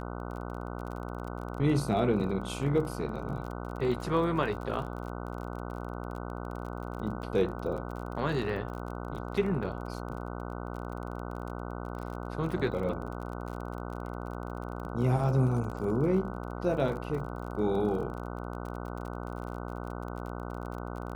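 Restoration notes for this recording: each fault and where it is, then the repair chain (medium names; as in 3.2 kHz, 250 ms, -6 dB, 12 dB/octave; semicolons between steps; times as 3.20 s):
buzz 60 Hz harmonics 25 -38 dBFS
crackle 33 per s -38 dBFS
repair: de-click; de-hum 60 Hz, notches 25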